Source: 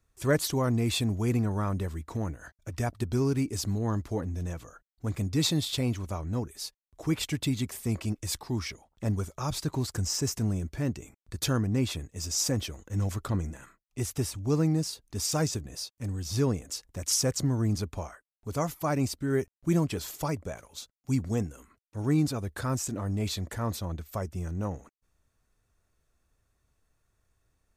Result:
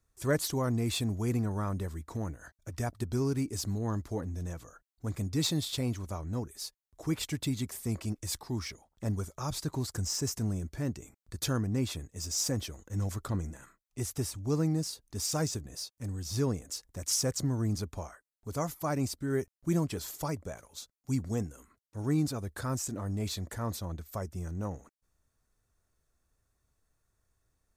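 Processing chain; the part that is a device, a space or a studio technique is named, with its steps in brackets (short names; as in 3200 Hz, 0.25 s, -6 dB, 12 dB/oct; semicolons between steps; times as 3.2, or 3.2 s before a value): exciter from parts (in parallel at -7 dB: HPF 2500 Hz 24 dB/oct + soft clip -35.5 dBFS, distortion -5 dB); on the sum: gain -3.5 dB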